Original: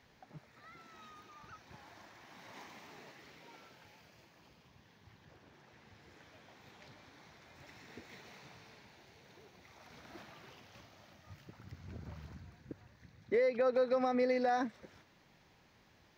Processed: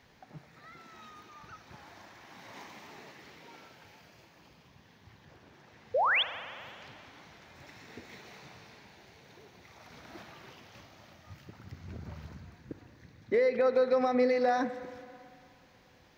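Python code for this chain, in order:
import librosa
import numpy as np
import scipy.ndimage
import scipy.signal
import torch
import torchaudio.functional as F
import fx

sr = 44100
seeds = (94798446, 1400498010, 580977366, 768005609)

y = fx.spec_paint(x, sr, seeds[0], shape='rise', start_s=5.94, length_s=0.29, low_hz=460.0, high_hz=3700.0, level_db=-30.0)
y = fx.rev_spring(y, sr, rt60_s=2.6, pass_ms=(36, 56), chirp_ms=45, drr_db=11.5)
y = F.gain(torch.from_numpy(y), 4.0).numpy()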